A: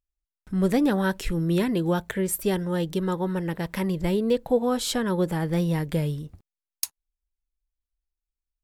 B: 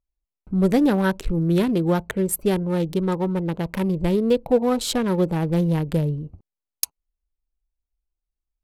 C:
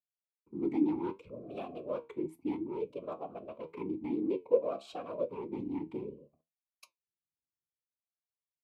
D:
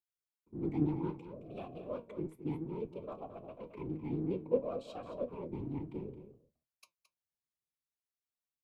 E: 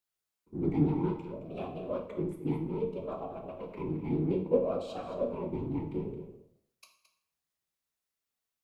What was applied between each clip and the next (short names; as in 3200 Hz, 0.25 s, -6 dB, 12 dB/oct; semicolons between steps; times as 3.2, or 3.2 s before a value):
Wiener smoothing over 25 samples; gain +4 dB
whisperiser; flange 0.73 Hz, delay 8.2 ms, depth 6.8 ms, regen +68%; vowel sweep a-u 0.61 Hz
octaver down 1 oct, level 0 dB; on a send: echo 0.219 s -11.5 dB; on the sum: gain -4.5 dB
plate-style reverb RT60 0.65 s, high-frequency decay 0.9×, DRR 2.5 dB; gain +4.5 dB